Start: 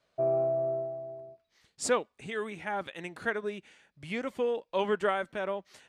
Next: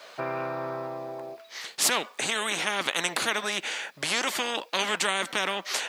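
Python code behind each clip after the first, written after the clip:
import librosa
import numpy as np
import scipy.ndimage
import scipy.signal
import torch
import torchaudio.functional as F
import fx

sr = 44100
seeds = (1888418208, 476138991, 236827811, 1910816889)

y = scipy.signal.sosfilt(scipy.signal.butter(2, 540.0, 'highpass', fs=sr, output='sos'), x)
y = fx.peak_eq(y, sr, hz=9200.0, db=-3.5, octaves=0.32)
y = fx.spectral_comp(y, sr, ratio=4.0)
y = F.gain(torch.from_numpy(y), 8.0).numpy()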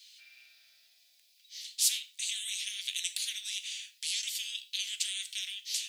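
y = scipy.signal.sosfilt(scipy.signal.cheby2(4, 50, 1200.0, 'highpass', fs=sr, output='sos'), x)
y = fx.rev_gated(y, sr, seeds[0], gate_ms=140, shape='falling', drr_db=9.0)
y = F.gain(torch.from_numpy(y), -2.5).numpy()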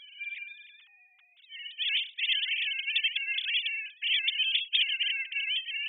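y = fx.sine_speech(x, sr)
y = F.gain(torch.from_numpy(y), 5.5).numpy()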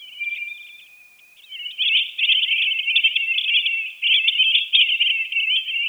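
y = fx.curve_eq(x, sr, hz=(850.0, 1500.0, 2400.0, 3800.0), db=(0, -29, 11, 9))
y = fx.quant_dither(y, sr, seeds[1], bits=10, dither='triangular')
y = fx.room_shoebox(y, sr, seeds[2], volume_m3=3500.0, walls='mixed', distance_m=0.38)
y = F.gain(torch.from_numpy(y), 1.0).numpy()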